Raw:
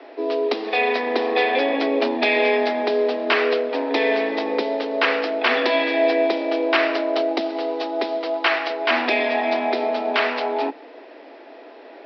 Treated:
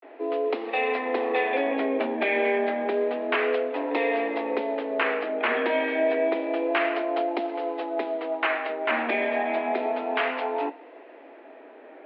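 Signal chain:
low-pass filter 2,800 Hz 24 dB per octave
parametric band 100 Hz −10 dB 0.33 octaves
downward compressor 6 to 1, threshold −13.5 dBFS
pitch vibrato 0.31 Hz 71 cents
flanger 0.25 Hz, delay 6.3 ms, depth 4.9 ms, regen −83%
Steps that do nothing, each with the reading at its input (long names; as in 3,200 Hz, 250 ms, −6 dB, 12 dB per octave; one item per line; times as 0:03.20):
parametric band 100 Hz: nothing at its input below 210 Hz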